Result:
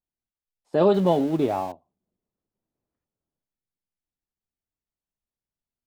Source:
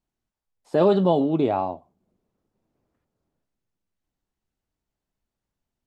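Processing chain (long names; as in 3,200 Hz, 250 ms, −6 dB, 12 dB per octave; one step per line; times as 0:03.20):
0:00.94–0:01.72: converter with a step at zero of −33.5 dBFS
expander for the loud parts 1.5 to 1, over −39 dBFS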